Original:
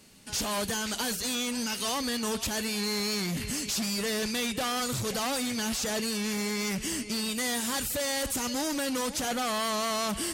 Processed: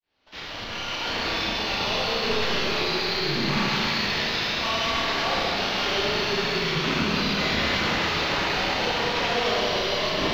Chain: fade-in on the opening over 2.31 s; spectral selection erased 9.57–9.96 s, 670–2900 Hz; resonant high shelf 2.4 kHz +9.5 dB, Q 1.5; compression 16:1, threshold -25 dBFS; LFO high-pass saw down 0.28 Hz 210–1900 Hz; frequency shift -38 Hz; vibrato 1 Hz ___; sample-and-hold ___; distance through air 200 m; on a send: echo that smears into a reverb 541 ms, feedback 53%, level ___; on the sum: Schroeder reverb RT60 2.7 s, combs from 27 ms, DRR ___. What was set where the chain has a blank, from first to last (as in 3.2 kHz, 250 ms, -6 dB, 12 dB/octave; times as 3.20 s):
91 cents, 5×, -13 dB, -6.5 dB